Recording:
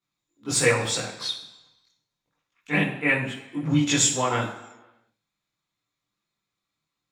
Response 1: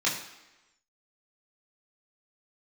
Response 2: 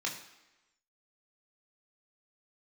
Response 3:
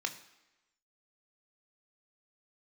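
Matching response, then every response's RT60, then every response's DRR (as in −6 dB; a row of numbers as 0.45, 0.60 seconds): 1; 1.0, 1.0, 1.0 seconds; −7.0, −2.0, 5.5 decibels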